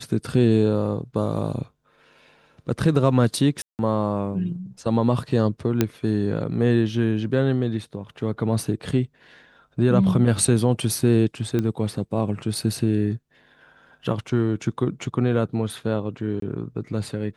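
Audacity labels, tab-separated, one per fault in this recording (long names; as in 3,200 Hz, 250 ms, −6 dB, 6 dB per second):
3.620000	3.790000	drop-out 169 ms
5.810000	5.810000	click −5 dBFS
11.590000	11.590000	click −13 dBFS
16.400000	16.420000	drop-out 23 ms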